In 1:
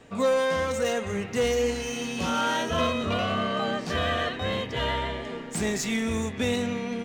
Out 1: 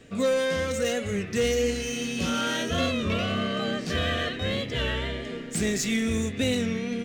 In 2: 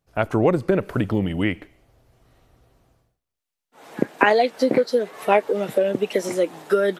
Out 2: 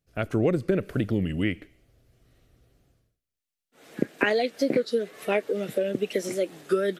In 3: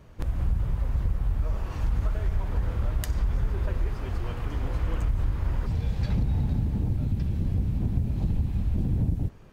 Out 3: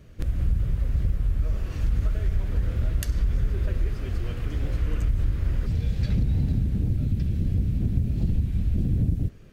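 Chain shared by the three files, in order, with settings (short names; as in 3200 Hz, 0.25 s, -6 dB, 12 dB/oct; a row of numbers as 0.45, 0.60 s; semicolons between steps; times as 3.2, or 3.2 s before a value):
bell 910 Hz -13.5 dB 0.82 oct; record warp 33 1/3 rpm, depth 100 cents; match loudness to -27 LUFS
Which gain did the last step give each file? +2.5, -3.0, +2.0 dB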